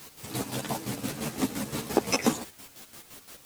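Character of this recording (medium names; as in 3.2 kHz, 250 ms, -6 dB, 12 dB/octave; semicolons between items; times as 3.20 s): a quantiser's noise floor 8-bit, dither triangular; chopped level 5.8 Hz, depth 60%, duty 45%; a shimmering, thickened sound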